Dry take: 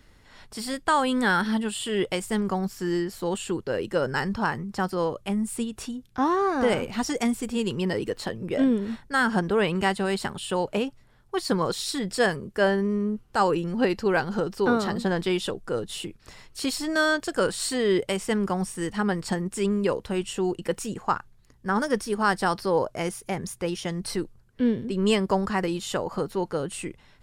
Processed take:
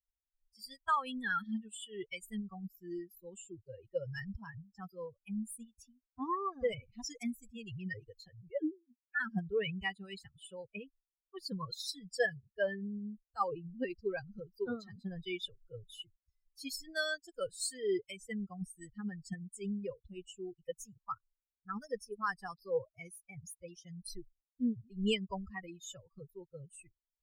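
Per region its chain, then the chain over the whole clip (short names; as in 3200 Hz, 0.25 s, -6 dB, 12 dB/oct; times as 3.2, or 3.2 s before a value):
8.5–9.2 sine-wave speech + dynamic EQ 430 Hz, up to -4 dB, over -30 dBFS, Q 0.98 + three-band expander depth 70%
whole clip: per-bin expansion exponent 3; bell 690 Hz -7 dB 0.81 oct; comb 1.7 ms, depth 42%; gain -3.5 dB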